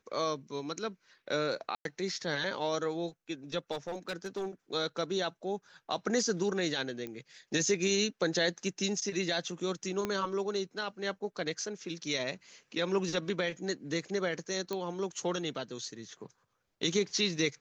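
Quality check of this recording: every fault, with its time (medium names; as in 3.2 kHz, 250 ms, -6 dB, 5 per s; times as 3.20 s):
1.75–1.85 s: dropout 102 ms
3.71–4.48 s: clipped -31.5 dBFS
7.07 s: pop -26 dBFS
10.05 s: pop -18 dBFS
14.73 s: pop -21 dBFS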